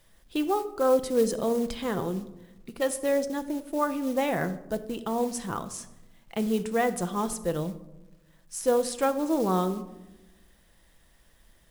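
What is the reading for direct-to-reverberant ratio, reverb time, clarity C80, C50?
9.0 dB, 1.0 s, 16.5 dB, 14.0 dB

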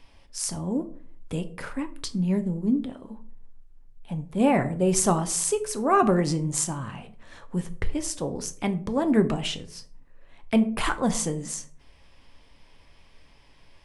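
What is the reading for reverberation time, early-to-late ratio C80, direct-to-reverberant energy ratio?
0.50 s, 20.0 dB, 8.5 dB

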